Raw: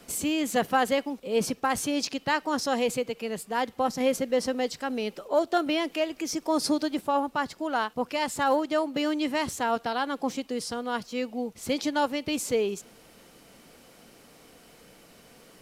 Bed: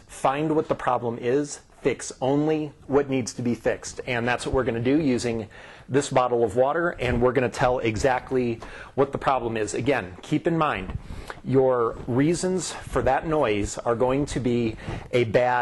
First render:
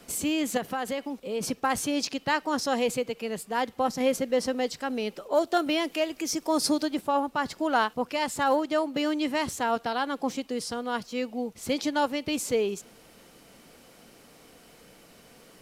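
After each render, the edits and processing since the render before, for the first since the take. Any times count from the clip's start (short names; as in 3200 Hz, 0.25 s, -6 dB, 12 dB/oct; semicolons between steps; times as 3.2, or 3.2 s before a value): 0.57–1.43 compressor 2.5:1, threshold -29 dBFS; 5.32–6.85 high shelf 5400 Hz +5 dB; 7.45–7.96 gain +3.5 dB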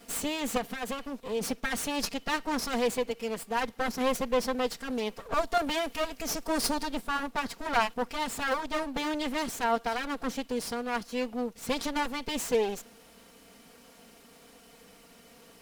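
minimum comb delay 4.3 ms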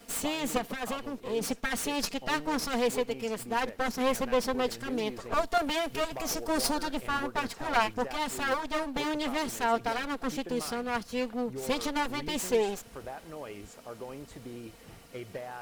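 add bed -20 dB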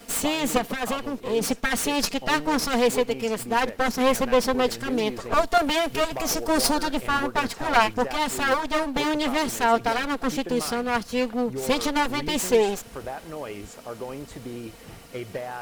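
gain +7 dB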